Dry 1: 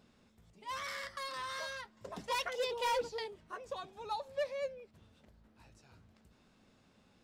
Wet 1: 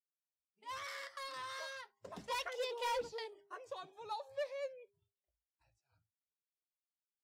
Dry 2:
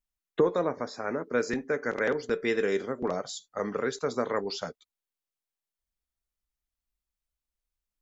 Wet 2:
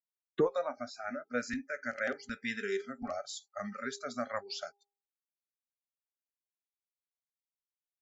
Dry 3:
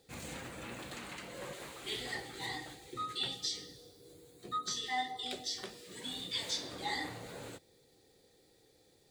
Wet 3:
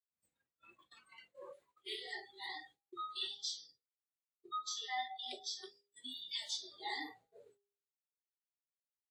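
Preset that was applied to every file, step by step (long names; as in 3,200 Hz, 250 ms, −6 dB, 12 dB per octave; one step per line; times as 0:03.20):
noise reduction from a noise print of the clip's start 26 dB
downward expander −54 dBFS
hum removal 403.4 Hz, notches 2
level −4 dB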